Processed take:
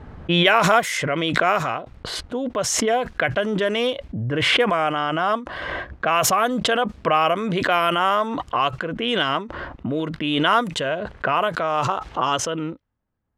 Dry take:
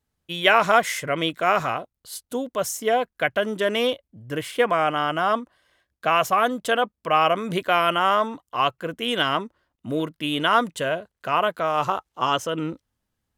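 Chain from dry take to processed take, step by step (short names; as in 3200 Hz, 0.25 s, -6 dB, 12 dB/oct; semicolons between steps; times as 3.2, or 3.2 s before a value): low-pass opened by the level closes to 1400 Hz, open at -15.5 dBFS; backwards sustainer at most 25 dB/s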